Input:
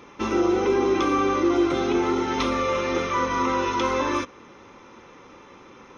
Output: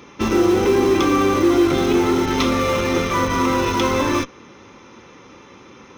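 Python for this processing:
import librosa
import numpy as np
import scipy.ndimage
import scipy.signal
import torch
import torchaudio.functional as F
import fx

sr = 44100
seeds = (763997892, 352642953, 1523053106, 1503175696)

p1 = scipy.signal.sosfilt(scipy.signal.butter(2, 58.0, 'highpass', fs=sr, output='sos'), x)
p2 = fx.peak_eq(p1, sr, hz=860.0, db=-6.0, octaves=3.0)
p3 = fx.schmitt(p2, sr, flips_db=-26.5)
p4 = p2 + (p3 * 10.0 ** (-7.5 / 20.0))
y = p4 * 10.0 ** (7.5 / 20.0)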